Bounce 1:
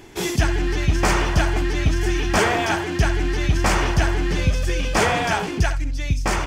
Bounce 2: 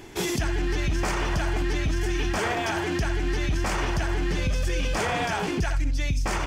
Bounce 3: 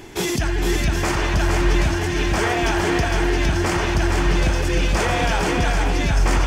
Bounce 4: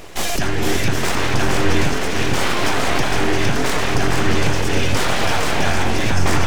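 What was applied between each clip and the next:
peak limiter -17.5 dBFS, peak gain reduction 10.5 dB
shuffle delay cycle 767 ms, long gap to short 1.5:1, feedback 30%, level -3.5 dB; trim +4.5 dB
full-wave rectifier; trim +4 dB

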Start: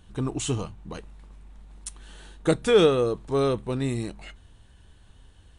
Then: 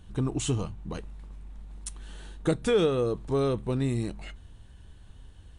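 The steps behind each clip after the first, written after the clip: bass shelf 310 Hz +5.5 dB; compression 2:1, threshold -23 dBFS, peak gain reduction 7 dB; trim -1.5 dB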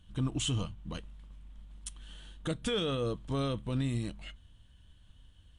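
graphic EQ with 31 bands 400 Hz -11 dB, 800 Hz -6 dB, 3.15 kHz +10 dB; peak limiter -22 dBFS, peak gain reduction 7.5 dB; upward expansion 1.5:1, over -46 dBFS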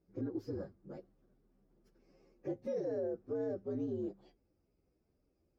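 frequency axis rescaled in octaves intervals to 120%; band-pass filter 420 Hz, Q 4.3; peak limiter -41 dBFS, peak gain reduction 8 dB; trim +11 dB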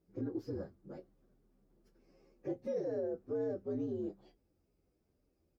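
doubling 24 ms -13 dB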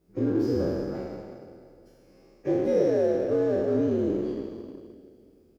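spectral sustain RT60 2.25 s; feedback delay 297 ms, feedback 51%, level -14.5 dB; in parallel at -5 dB: crossover distortion -49 dBFS; on the sum: trim +7 dB

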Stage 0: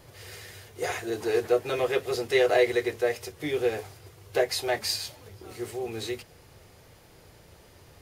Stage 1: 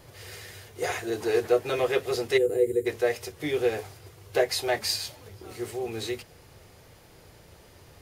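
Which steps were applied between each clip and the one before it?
time-frequency box 2.38–2.86 s, 500–6800 Hz -22 dB; trim +1 dB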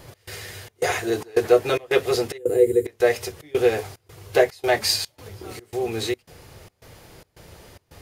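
trance gate "x.xxx.xx" 110 bpm -24 dB; trim +6.5 dB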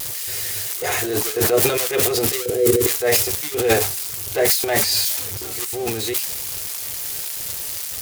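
zero-crossing glitches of -19 dBFS; vibrato 0.39 Hz 9.6 cents; transient shaper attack -6 dB, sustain +12 dB

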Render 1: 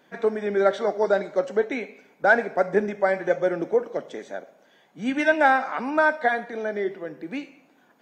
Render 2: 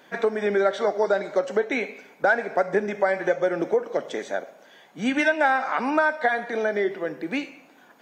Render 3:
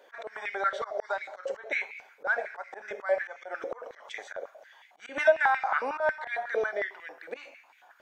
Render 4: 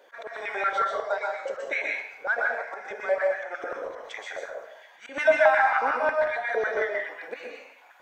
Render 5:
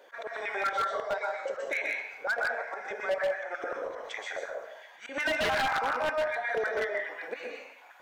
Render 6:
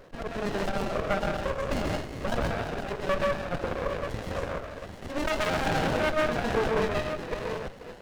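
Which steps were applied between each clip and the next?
bass shelf 370 Hz -6.5 dB; compression 3:1, threshold -28 dBFS, peak gain reduction 11.5 dB; trim +8 dB
slow attack 109 ms; step-sequenced high-pass 11 Hz 500–2200 Hz; trim -8.5 dB
plate-style reverb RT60 0.56 s, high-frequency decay 0.9×, pre-delay 110 ms, DRR -0.5 dB; trim +1 dB
in parallel at +1 dB: compression 5:1, threshold -34 dBFS, peak gain reduction 18 dB; on the sum: wavefolder -16.5 dBFS; trim -6 dB
chunks repeated in reverse 512 ms, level -8 dB; sliding maximum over 33 samples; trim +6.5 dB

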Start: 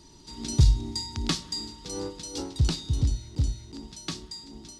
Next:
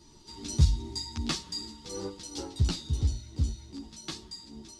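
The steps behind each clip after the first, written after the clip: three-phase chorus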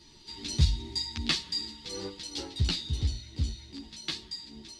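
high-order bell 2.8 kHz +9 dB; trim -2 dB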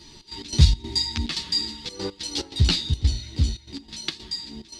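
trance gate "xx.x.xx.xxxx.xxx" 143 bpm -12 dB; trim +8.5 dB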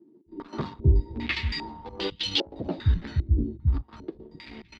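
waveshaping leveller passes 2; bands offset in time highs, lows 260 ms, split 180 Hz; step-sequenced low-pass 2.5 Hz 330–3100 Hz; trim -7.5 dB

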